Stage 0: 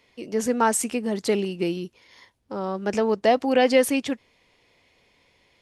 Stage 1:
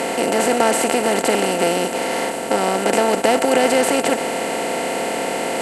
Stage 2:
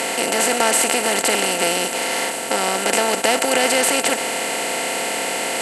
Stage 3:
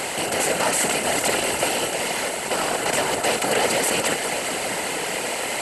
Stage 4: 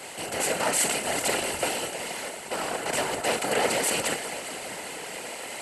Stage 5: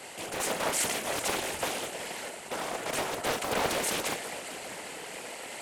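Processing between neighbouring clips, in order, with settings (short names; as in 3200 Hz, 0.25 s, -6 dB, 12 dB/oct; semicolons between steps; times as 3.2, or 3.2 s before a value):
per-bin compression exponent 0.2; gain -2.5 dB
tilt shelf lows -6 dB, about 1200 Hz
echo with dull and thin repeats by turns 0.201 s, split 2200 Hz, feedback 77%, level -7 dB; whisperiser; gain -4.5 dB
three-band expander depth 100%; gain -5.5 dB
Doppler distortion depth 0.78 ms; gain -4 dB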